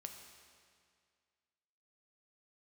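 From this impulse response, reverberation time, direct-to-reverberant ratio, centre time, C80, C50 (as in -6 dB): 2.1 s, 4.0 dB, 45 ms, 7.0 dB, 5.5 dB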